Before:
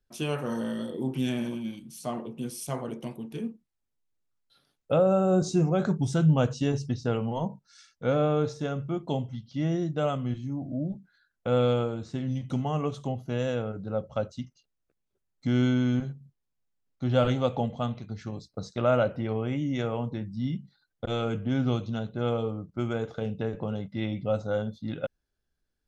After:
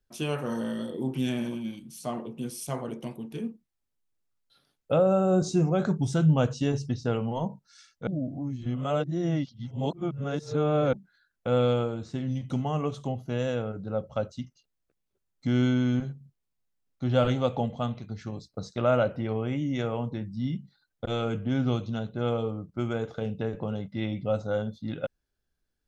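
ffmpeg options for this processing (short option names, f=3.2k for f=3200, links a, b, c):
-filter_complex "[0:a]asplit=3[a][b][c];[a]atrim=end=8.072[d];[b]atrim=start=8.068:end=10.932,asetpts=PTS-STARTPTS,areverse[e];[c]atrim=start=10.928[f];[d][e]acrossfade=d=0.004:c1=hsin:c2=hsin[g];[g][f]acrossfade=d=0.004:c1=hsin:c2=hsin"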